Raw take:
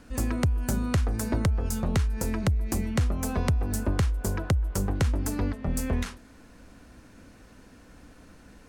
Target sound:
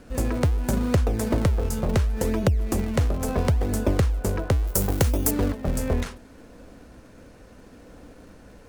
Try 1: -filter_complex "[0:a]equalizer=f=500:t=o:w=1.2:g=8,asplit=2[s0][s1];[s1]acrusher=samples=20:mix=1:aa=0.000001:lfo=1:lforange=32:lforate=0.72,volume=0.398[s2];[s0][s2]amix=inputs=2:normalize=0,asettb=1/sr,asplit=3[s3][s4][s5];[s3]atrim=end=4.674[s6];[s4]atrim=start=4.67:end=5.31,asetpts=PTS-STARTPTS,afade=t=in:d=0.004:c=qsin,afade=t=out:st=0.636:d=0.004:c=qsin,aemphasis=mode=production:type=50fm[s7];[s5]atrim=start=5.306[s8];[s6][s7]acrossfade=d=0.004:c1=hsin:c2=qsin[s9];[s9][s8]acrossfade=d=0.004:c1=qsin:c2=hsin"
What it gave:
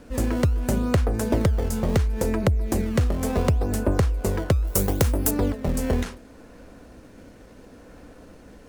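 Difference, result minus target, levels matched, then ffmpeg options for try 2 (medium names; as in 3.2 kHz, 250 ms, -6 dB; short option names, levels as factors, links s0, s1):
decimation with a swept rate: distortion -7 dB
-filter_complex "[0:a]equalizer=f=500:t=o:w=1.2:g=8,asplit=2[s0][s1];[s1]acrusher=samples=68:mix=1:aa=0.000001:lfo=1:lforange=109:lforate=0.72,volume=0.398[s2];[s0][s2]amix=inputs=2:normalize=0,asettb=1/sr,asplit=3[s3][s4][s5];[s3]atrim=end=4.674[s6];[s4]atrim=start=4.67:end=5.31,asetpts=PTS-STARTPTS,afade=t=in:d=0.004:c=qsin,afade=t=out:st=0.636:d=0.004:c=qsin,aemphasis=mode=production:type=50fm[s7];[s5]atrim=start=5.306[s8];[s6][s7]acrossfade=d=0.004:c1=hsin:c2=qsin[s9];[s9][s8]acrossfade=d=0.004:c1=qsin:c2=hsin"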